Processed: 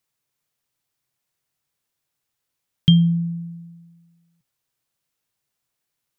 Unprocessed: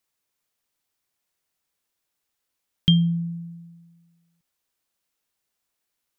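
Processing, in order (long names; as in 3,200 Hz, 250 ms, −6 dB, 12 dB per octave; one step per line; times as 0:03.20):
parametric band 130 Hz +11.5 dB 0.55 octaves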